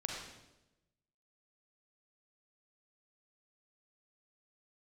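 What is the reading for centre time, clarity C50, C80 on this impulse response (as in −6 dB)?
60 ms, 0.5 dB, 3.5 dB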